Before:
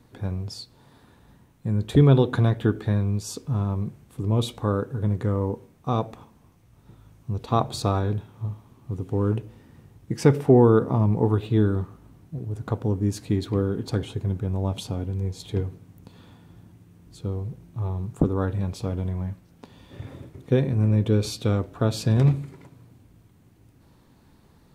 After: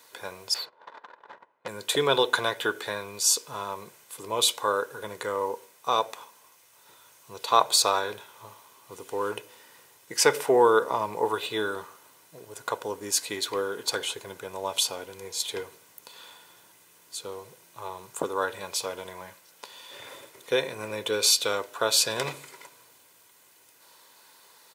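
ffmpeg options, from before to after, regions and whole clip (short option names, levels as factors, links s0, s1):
-filter_complex "[0:a]asettb=1/sr,asplit=3[s0][s1][s2];[s0]atrim=end=0.544[s3];[s1]atrim=start=0.54:end=1.68,asetpts=PTS-STARTPTS,afade=t=in:d=0.004:c=qsin,afade=t=out:st=1.136:d=0.004:c=qsin,agate=range=0.112:threshold=0.00224:ratio=16:release=100:detection=peak,asplit=2[s4][s5];[s5]highpass=f=720:p=1,volume=25.1,asoftclip=type=tanh:threshold=0.126[s6];[s4][s6]amix=inputs=2:normalize=0,lowpass=f=1600:p=1,volume=0.501,adynamicsmooth=sensitivity=4.5:basefreq=1100[s7];[s2]atrim=start=1.676[s8];[s3][s7]acrossfade=d=0.004:c1=hsin:c2=qsin[s9];[s9][s8]acrossfade=d=0.004:c1=qsin:c2=hsin,highpass=780,highshelf=f=3700:g=10,aecho=1:1:2:0.4,volume=2"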